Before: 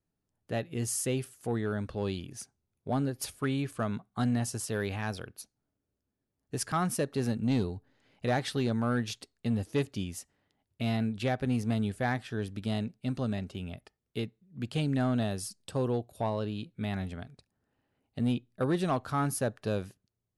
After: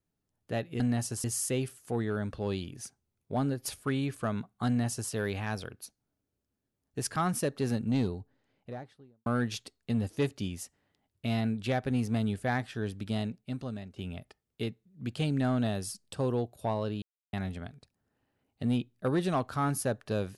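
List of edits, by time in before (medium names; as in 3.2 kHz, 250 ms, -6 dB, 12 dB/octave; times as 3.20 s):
4.23–4.67 s: copy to 0.80 s
7.33–8.82 s: studio fade out
12.68–13.52 s: fade out, to -11 dB
16.58–16.89 s: mute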